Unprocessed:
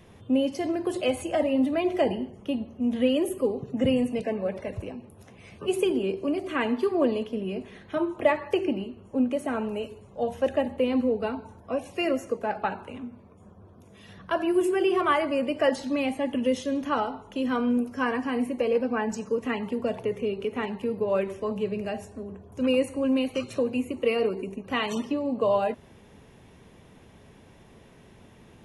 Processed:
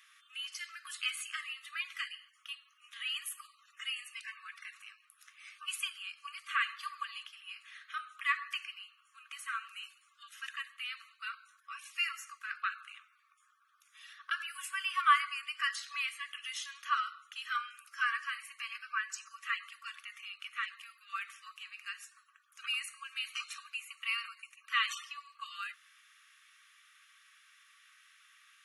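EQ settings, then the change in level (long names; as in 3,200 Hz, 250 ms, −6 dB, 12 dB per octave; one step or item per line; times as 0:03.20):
linear-phase brick-wall high-pass 1,100 Hz
0.0 dB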